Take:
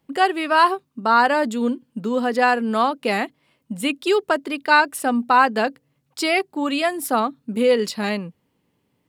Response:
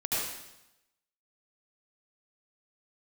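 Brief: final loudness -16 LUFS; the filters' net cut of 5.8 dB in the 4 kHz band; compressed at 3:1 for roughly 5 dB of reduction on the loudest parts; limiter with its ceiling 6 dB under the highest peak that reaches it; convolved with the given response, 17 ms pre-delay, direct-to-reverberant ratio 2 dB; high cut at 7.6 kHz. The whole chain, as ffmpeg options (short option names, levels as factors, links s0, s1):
-filter_complex "[0:a]lowpass=7600,equalizer=f=4000:t=o:g=-8,acompressor=threshold=0.141:ratio=3,alimiter=limit=0.211:level=0:latency=1,asplit=2[s0][s1];[1:a]atrim=start_sample=2205,adelay=17[s2];[s1][s2]afir=irnorm=-1:irlink=0,volume=0.316[s3];[s0][s3]amix=inputs=2:normalize=0,volume=2.11"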